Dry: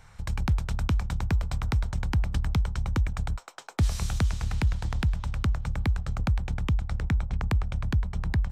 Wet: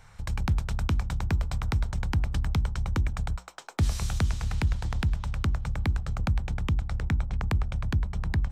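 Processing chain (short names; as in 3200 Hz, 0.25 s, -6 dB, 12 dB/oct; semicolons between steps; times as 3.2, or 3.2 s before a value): notches 60/120/180/240/300/360 Hz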